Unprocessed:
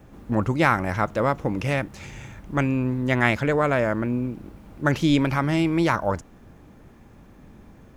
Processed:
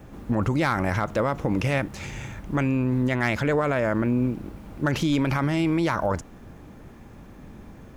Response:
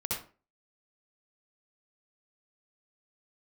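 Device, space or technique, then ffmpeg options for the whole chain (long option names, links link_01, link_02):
clipper into limiter: -af "asoftclip=type=hard:threshold=-10.5dB,alimiter=limit=-18.5dB:level=0:latency=1:release=48,volume=4dB"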